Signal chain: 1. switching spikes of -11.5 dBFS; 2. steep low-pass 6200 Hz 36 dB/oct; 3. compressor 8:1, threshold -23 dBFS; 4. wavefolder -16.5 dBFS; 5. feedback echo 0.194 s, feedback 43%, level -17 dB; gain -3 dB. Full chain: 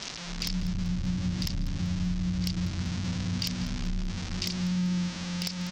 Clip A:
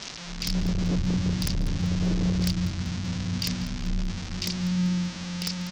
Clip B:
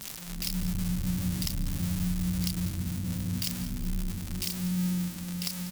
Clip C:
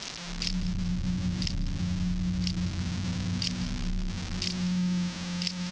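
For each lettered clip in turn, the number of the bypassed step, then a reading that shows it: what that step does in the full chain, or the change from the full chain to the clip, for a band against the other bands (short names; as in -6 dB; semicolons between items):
3, mean gain reduction 3.0 dB; 2, 8 kHz band +6.5 dB; 4, distortion -20 dB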